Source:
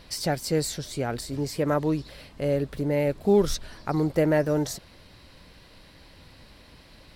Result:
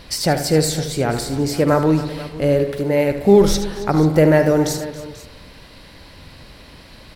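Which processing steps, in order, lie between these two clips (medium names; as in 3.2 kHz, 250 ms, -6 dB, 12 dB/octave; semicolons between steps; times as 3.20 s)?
2.63–3.11 s: bass shelf 180 Hz -10 dB; multi-tap echo 76/275/487 ms -11/-18/-17.5 dB; spring tank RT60 1.3 s, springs 45 ms, chirp 60 ms, DRR 10.5 dB; trim +8.5 dB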